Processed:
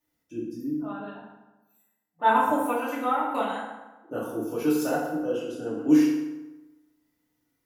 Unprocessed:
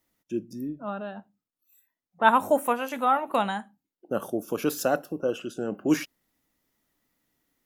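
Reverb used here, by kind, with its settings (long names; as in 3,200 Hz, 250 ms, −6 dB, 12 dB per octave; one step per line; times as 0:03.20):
feedback delay network reverb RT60 1.1 s, low-frequency decay 1.05×, high-frequency decay 0.65×, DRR −8.5 dB
level −11 dB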